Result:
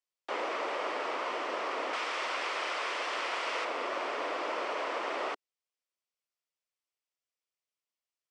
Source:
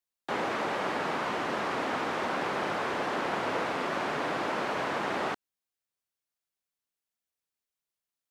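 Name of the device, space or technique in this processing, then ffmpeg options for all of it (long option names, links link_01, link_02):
phone speaker on a table: -filter_complex "[0:a]highpass=frequency=370:width=0.5412,highpass=frequency=370:width=1.3066,equalizer=frequency=400:width_type=q:width=4:gain=-3,equalizer=frequency=810:width_type=q:width=4:gain=-6,equalizer=frequency=1600:width_type=q:width=4:gain=-7,equalizer=frequency=3900:width_type=q:width=4:gain=-5,equalizer=frequency=6700:width_type=q:width=4:gain=-5,lowpass=frequency=7800:width=0.5412,lowpass=frequency=7800:width=1.3066,asettb=1/sr,asplit=3[link_01][link_02][link_03];[link_01]atrim=end=1.934[link_04];[link_02]atrim=start=1.93:end=3.65,asetpts=PTS-STARTPTS,afade=type=in:duration=0.004:curve=qsin,afade=type=out:start_time=1.716:duration=0.004:curve=qsin,tiltshelf=frequency=1100:gain=-7[link_05];[link_03]atrim=start=3.646[link_06];[link_04][link_05]acrossfade=duration=0.004:curve1=hsin:curve2=qsin[link_07];[link_07][link_06]acrossfade=duration=0.004:curve1=qsin:curve2=hsin"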